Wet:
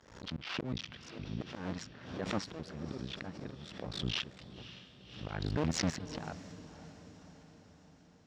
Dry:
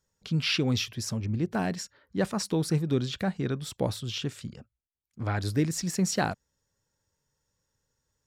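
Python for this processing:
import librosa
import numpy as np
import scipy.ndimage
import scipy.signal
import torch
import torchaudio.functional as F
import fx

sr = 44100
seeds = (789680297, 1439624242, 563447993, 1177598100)

y = fx.cycle_switch(x, sr, every=2, mode='muted')
y = fx.rider(y, sr, range_db=4, speed_s=0.5)
y = fx.auto_swell(y, sr, attack_ms=620.0)
y = np.clip(10.0 ** (32.0 / 20.0) * y, -1.0, 1.0) / 10.0 ** (32.0 / 20.0)
y = fx.highpass(y, sr, hz=100.0, slope=6)
y = fx.air_absorb(y, sr, metres=190.0)
y = fx.echo_diffused(y, sr, ms=551, feedback_pct=58, wet_db=-13.5)
y = fx.pre_swell(y, sr, db_per_s=83.0)
y = F.gain(torch.from_numpy(y), 8.5).numpy()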